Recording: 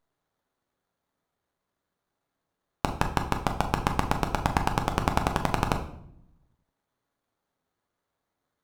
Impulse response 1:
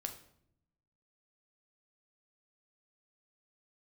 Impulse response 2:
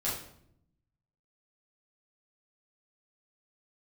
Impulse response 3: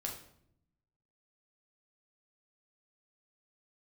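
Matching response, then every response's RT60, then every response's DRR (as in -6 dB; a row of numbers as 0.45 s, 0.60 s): 1; 0.70 s, 0.70 s, 0.70 s; 4.5 dB, -8.5 dB, -0.5 dB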